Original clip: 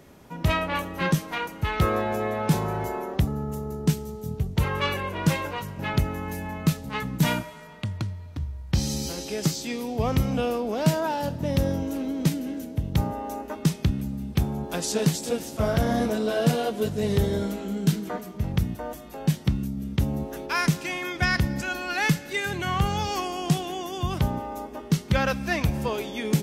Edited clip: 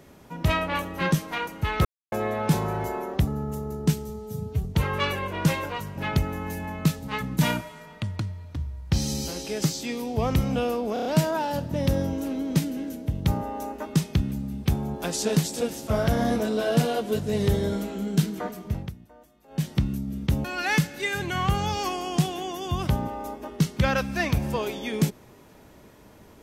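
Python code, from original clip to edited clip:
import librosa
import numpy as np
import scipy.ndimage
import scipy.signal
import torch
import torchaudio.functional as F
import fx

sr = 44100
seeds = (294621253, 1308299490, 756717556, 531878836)

y = fx.edit(x, sr, fx.silence(start_s=1.85, length_s=0.27),
    fx.stretch_span(start_s=4.09, length_s=0.37, factor=1.5),
    fx.stutter(start_s=10.75, slice_s=0.03, count=5),
    fx.fade_down_up(start_s=18.4, length_s=0.99, db=-18.0, fade_s=0.22),
    fx.cut(start_s=20.14, length_s=1.62), tone=tone)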